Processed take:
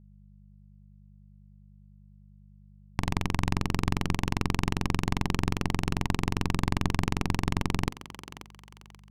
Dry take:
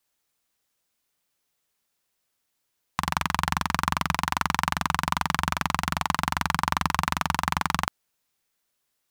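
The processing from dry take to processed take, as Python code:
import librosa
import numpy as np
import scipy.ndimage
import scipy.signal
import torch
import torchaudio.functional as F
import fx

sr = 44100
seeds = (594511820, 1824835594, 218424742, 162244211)

p1 = fx.wiener(x, sr, points=25)
p2 = np.clip(p1, -10.0 ** (-13.0 / 20.0), 10.0 ** (-13.0 / 20.0))
p3 = p1 + F.gain(torch.from_numpy(p2), -3.0).numpy()
p4 = fx.hum_notches(p3, sr, base_hz=50, count=5)
p5 = np.maximum(p4, 0.0)
p6 = fx.low_shelf(p5, sr, hz=420.0, db=8.5)
p7 = fx.dmg_buzz(p6, sr, base_hz=50.0, harmonics=4, level_db=-47.0, tilt_db=-3, odd_only=False)
p8 = fx.peak_eq(p7, sr, hz=1400.0, db=-10.0, octaves=0.55)
p9 = p8 + fx.echo_thinned(p8, sr, ms=534, feedback_pct=37, hz=510.0, wet_db=-10.5, dry=0)
p10 = fx.doppler_dist(p9, sr, depth_ms=0.39)
y = F.gain(torch.from_numpy(p10), -7.0).numpy()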